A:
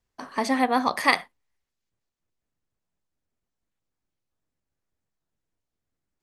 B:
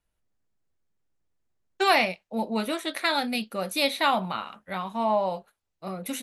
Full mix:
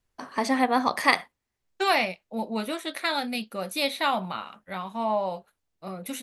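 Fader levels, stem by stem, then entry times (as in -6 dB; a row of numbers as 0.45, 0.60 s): -0.5, -2.0 dB; 0.00, 0.00 s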